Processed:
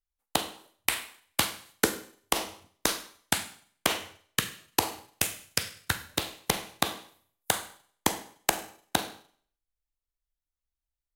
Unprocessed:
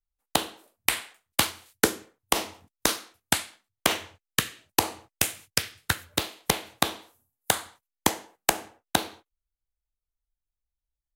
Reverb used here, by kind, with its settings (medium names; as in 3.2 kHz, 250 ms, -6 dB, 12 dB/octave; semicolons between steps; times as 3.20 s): Schroeder reverb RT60 0.53 s, combs from 33 ms, DRR 11.5 dB; trim -3 dB